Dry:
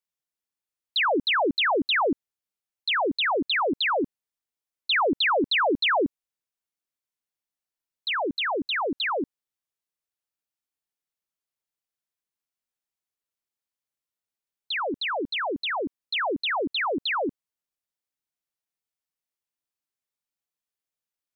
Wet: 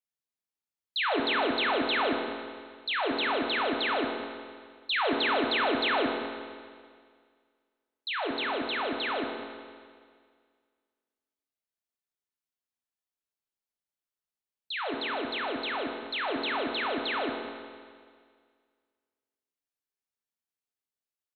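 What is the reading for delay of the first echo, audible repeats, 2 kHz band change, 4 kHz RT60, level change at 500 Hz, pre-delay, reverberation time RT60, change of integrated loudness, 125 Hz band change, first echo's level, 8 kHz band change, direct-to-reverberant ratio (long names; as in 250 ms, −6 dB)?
157 ms, 1, −4.0 dB, 1.9 s, −3.5 dB, 5 ms, 1.9 s, −4.5 dB, −4.5 dB, −12.5 dB, can't be measured, 1.0 dB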